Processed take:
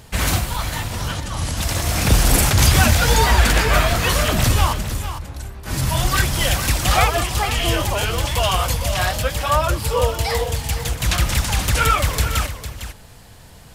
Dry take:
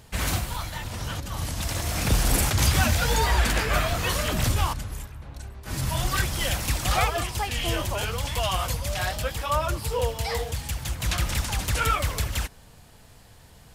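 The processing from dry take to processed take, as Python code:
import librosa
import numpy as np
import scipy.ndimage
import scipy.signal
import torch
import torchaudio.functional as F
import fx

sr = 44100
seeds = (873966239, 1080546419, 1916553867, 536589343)

y = fx.ellip_lowpass(x, sr, hz=11000.0, order=4, stop_db=40, at=(1.12, 1.57))
y = y + 10.0 ** (-10.5 / 20.0) * np.pad(y, (int(454 * sr / 1000.0), 0))[:len(y)]
y = y * 10.0 ** (7.0 / 20.0)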